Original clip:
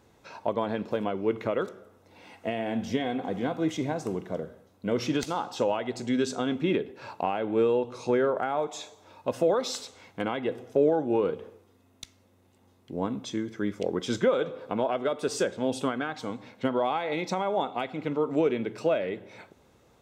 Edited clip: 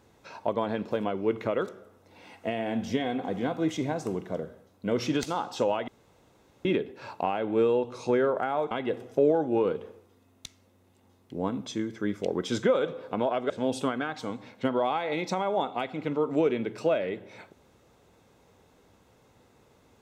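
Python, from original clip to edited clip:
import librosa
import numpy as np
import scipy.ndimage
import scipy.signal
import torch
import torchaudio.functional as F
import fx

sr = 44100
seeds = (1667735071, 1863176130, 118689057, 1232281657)

y = fx.edit(x, sr, fx.room_tone_fill(start_s=5.88, length_s=0.77),
    fx.cut(start_s=8.71, length_s=1.58),
    fx.cut(start_s=15.08, length_s=0.42), tone=tone)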